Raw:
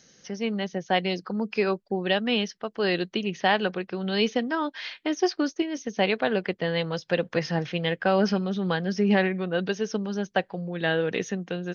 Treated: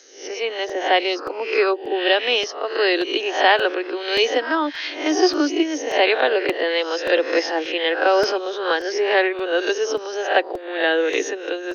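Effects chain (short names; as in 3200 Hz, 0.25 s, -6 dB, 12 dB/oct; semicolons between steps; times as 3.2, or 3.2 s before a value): spectral swells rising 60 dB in 0.50 s; steep high-pass 280 Hz 96 dB/oct; crackling interface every 0.58 s, samples 128, repeat, from 0.69; gain +6 dB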